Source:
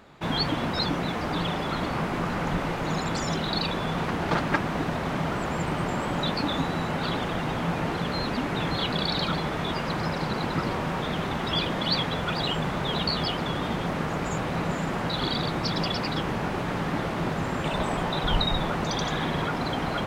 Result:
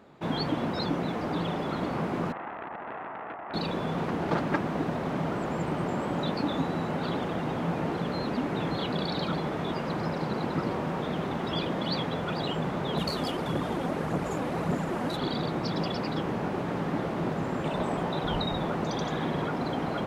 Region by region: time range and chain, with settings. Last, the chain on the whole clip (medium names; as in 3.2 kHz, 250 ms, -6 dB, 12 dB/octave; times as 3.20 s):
2.32–3.54 s: brick-wall FIR band-pass 590–1400 Hz + loudspeaker Doppler distortion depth 0.62 ms
12.97–15.17 s: CVSD coder 64 kbps + phaser 1.7 Hz, delay 4.2 ms, feedback 42%
whole clip: high-pass 460 Hz 6 dB/octave; tilt shelf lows +8.5 dB, about 670 Hz